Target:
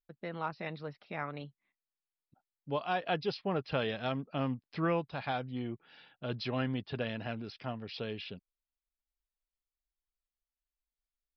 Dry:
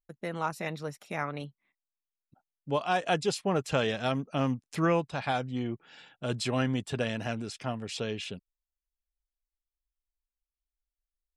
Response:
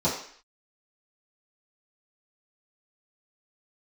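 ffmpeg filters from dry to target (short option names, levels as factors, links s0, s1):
-af "aresample=11025,aresample=44100,volume=0.562"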